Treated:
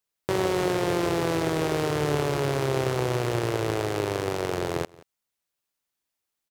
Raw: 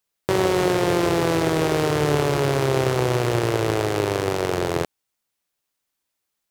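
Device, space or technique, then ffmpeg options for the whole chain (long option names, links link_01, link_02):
ducked delay: -filter_complex "[0:a]asplit=3[link_01][link_02][link_03];[link_02]adelay=177,volume=-8dB[link_04];[link_03]apad=whole_len=294549[link_05];[link_04][link_05]sidechaincompress=threshold=-37dB:ratio=16:attack=50:release=471[link_06];[link_01][link_06]amix=inputs=2:normalize=0,volume=-5dB"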